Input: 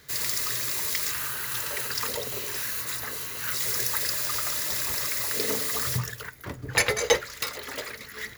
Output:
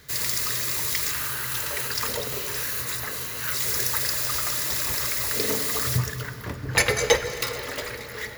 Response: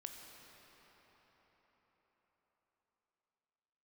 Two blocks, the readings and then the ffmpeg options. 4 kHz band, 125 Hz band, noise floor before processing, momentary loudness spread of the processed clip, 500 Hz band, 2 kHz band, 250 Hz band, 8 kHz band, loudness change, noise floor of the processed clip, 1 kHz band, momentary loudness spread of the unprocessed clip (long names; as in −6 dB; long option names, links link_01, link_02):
+2.0 dB, +6.0 dB, −44 dBFS, 8 LU, +2.5 dB, +2.5 dB, +4.0 dB, +2.0 dB, +2.0 dB, −37 dBFS, +2.5 dB, 11 LU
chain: -filter_complex "[0:a]asplit=2[link_01][link_02];[1:a]atrim=start_sample=2205,lowshelf=frequency=180:gain=9[link_03];[link_02][link_03]afir=irnorm=-1:irlink=0,volume=4.5dB[link_04];[link_01][link_04]amix=inputs=2:normalize=0,volume=-3.5dB"